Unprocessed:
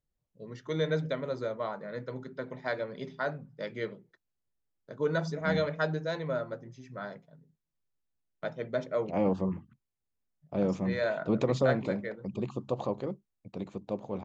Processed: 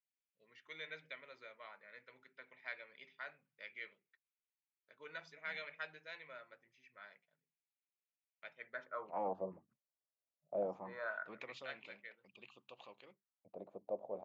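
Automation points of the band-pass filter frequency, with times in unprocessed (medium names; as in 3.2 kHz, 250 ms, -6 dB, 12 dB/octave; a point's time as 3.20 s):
band-pass filter, Q 4
8.54 s 2.4 kHz
9.44 s 610 Hz
10.57 s 610 Hz
11.59 s 2.7 kHz
13.08 s 2.7 kHz
13.49 s 620 Hz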